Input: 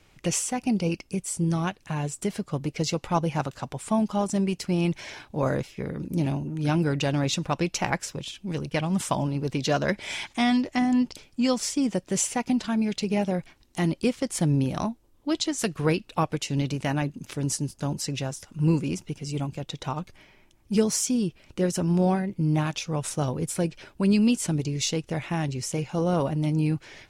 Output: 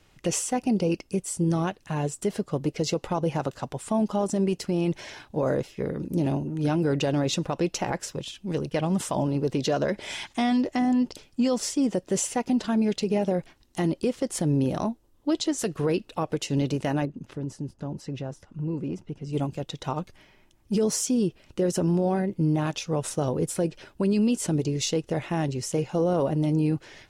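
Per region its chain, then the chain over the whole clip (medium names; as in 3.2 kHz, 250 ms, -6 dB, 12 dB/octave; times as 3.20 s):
17.05–19.33 s: compression 4:1, threshold -28 dBFS + low-pass 1.2 kHz 6 dB/octave
whole clip: band-stop 2.3 kHz, Q 13; dynamic bell 450 Hz, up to +8 dB, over -39 dBFS, Q 0.86; peak limiter -15.5 dBFS; trim -1 dB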